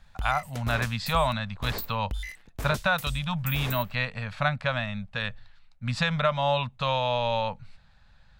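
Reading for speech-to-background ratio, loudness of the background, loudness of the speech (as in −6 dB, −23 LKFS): 9.0 dB, −37.5 LKFS, −28.5 LKFS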